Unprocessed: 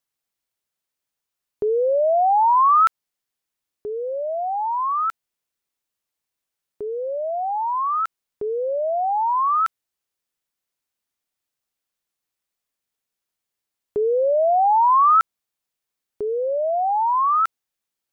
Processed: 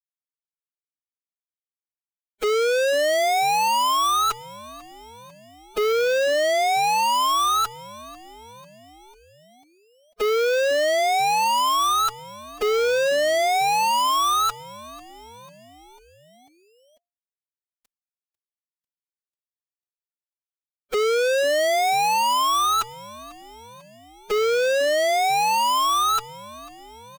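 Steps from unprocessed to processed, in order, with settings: spectral levelling over time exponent 0.6; in parallel at +1 dB: compression 16:1, threshold -27 dBFS, peak gain reduction 16.5 dB; on the sum: waveshaping leveller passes 2; fuzz box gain 41 dB, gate -38 dBFS; time stretch by phase-locked vocoder 1.5×; on a send: frequency-shifting echo 495 ms, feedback 60%, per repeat -140 Hz, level -21 dB; on the sum: trim -6.5 dB

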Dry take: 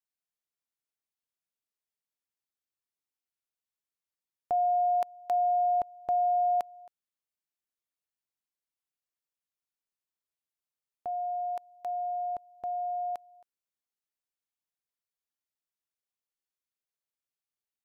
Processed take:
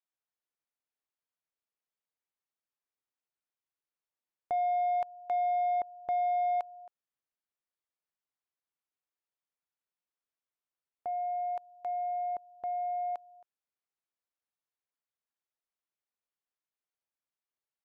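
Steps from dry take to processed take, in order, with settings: overdrive pedal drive 10 dB, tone 1.1 kHz, clips at -22.5 dBFS; trim -1.5 dB

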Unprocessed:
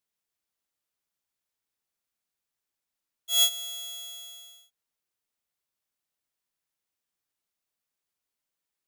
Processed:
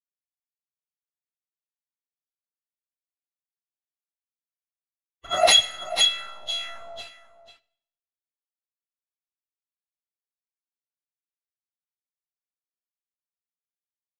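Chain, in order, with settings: self-modulated delay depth 0.73 ms; high-pass 70 Hz 12 dB/octave; gate with hold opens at -43 dBFS; bass shelf 260 Hz -11 dB; comb 5.2 ms, depth 41%; dynamic bell 860 Hz, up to -4 dB, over -53 dBFS, Q 1.8; small samples zeroed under -44.5 dBFS; LFO low-pass saw down 3.2 Hz 610–3900 Hz; plain phase-vocoder stretch 1.6×; delay 488 ms -13 dB; reverberation RT60 0.75 s, pre-delay 37 ms, DRR 20.5 dB; loudness maximiser +29.5 dB; trim -5.5 dB

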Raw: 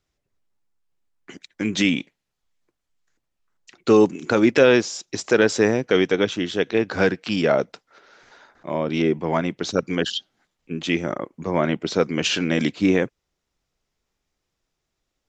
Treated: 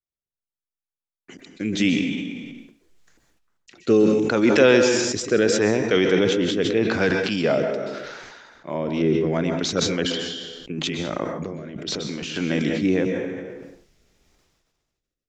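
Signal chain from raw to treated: gate with hold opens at -52 dBFS; 10.14–12.36 s: compressor with a negative ratio -31 dBFS, ratio -1; rotary cabinet horn 0.8 Hz; plate-style reverb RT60 0.6 s, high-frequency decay 0.9×, pre-delay 115 ms, DRR 8 dB; decay stretcher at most 31 dB/s

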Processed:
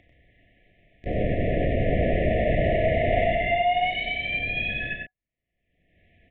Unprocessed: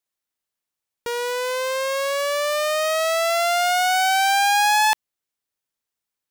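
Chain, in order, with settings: LPC vocoder at 8 kHz whisper; low-pass 2.3 kHz 24 dB/octave; bass shelf 260 Hz +5 dB; upward compressor, threshold -31 dBFS; FFT band-reject 740–1700 Hz; loudspeakers at several distances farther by 12 m -10 dB, 32 m -3 dB, 43 m -8 dB; trim -2.5 dB

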